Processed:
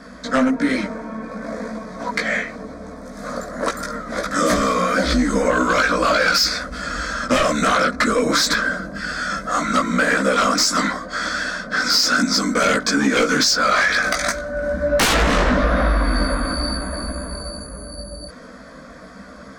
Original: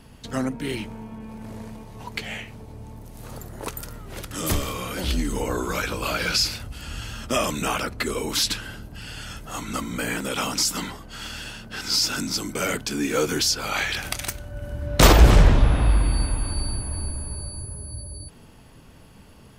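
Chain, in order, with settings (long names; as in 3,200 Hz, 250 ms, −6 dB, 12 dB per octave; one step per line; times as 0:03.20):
high-pass filter 450 Hz 6 dB per octave
high-frequency loss of the air 130 metres
phaser with its sweep stopped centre 570 Hz, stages 8
sine wavefolder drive 19 dB, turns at −6 dBFS
multi-voice chorus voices 6, 0.97 Hz, delay 18 ms, depth 3 ms
downward compressor, threshold −13 dBFS, peak gain reduction 6 dB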